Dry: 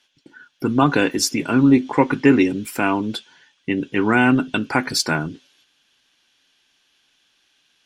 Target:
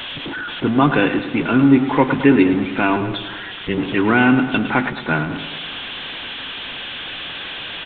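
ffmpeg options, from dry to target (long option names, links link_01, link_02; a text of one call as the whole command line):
ffmpeg -i in.wav -filter_complex "[0:a]aeval=exprs='val(0)+0.5*0.0794*sgn(val(0))':channel_layout=same,asettb=1/sr,asplit=3[link_01][link_02][link_03];[link_01]atrim=end=2.964[link_04];[link_02]atrim=start=2.96:end=3.78,asetpts=PTS-STARTPTS,afade=type=in:duration=0.004:curve=qsin,afade=type=out:start_time=0.816:duration=0.004:curve=qsin,aeval=exprs='val(0)*sin(2*PI*100*n/s)':channel_layout=same[link_05];[link_03]atrim=start=3.776[link_06];[link_04][link_05]acrossfade=duration=0.004:curve1=hsin:curve2=qsin[link_07];[link_07][link_06]acrossfade=duration=0.004:curve1=qsin:curve2=hsin,asplit=3[link_08][link_09][link_10];[link_08]afade=type=out:start_time=4.89:duration=0.02[link_11];[link_09]agate=range=-33dB:threshold=-17dB:ratio=3:detection=peak,afade=type=in:start_time=4.89:duration=0.02,afade=type=out:start_time=5.29:duration=0.02[link_12];[link_10]afade=type=in:start_time=5.29:duration=0.02[link_13];[link_11][link_12][link_13]amix=inputs=3:normalize=0,aresample=8000,aresample=44100,asplit=2[link_14][link_15];[link_15]aecho=0:1:108|216|324|432|540|648:0.282|0.158|0.0884|0.0495|0.0277|0.0155[link_16];[link_14][link_16]amix=inputs=2:normalize=0" out.wav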